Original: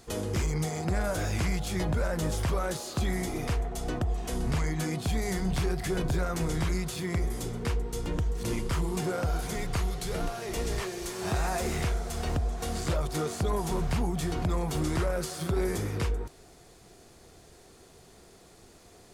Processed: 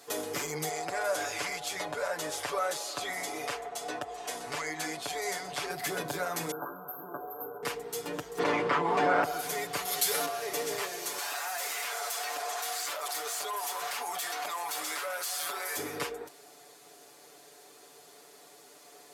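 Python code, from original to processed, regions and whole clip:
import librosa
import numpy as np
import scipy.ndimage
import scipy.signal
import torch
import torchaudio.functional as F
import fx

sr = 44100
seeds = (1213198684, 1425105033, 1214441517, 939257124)

y = fx.chain(x, sr, fx.lowpass(hz=9800.0, slope=12),
    fx.peak_eq(hz=190.0, db=-9.5, octaves=1.4), at=(0.69, 5.7))
y = fx.chain(y, sr, fx.brickwall_bandstop(low_hz=1600.0, high_hz=12000.0),
    fx.peak_eq(hz=84.0, db=-13.5, octaves=3.0),
    fx.doubler(ms=15.0, db=-4.5), at=(6.51, 7.63))
y = fx.spec_clip(y, sr, under_db=14, at=(8.37, 9.23), fade=0.02)
y = fx.lowpass(y, sr, hz=1900.0, slope=12, at=(8.37, 9.23), fade=0.02)
y = fx.env_flatten(y, sr, amount_pct=100, at=(8.37, 9.23), fade=0.02)
y = fx.chain(y, sr, fx.tilt_eq(slope=2.5),
    fx.env_flatten(amount_pct=50), at=(9.85, 10.26))
y = fx.chain(y, sr, fx.highpass(hz=930.0, slope=12),
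    fx.clip_hard(threshold_db=-36.0),
    fx.env_flatten(amount_pct=100), at=(11.18, 15.77))
y = scipy.signal.sosfilt(scipy.signal.butter(2, 410.0, 'highpass', fs=sr, output='sos'), y)
y = fx.peak_eq(y, sr, hz=13000.0, db=9.0, octaves=0.31)
y = y + 0.86 * np.pad(y, (int(6.9 * sr / 1000.0), 0))[:len(y)]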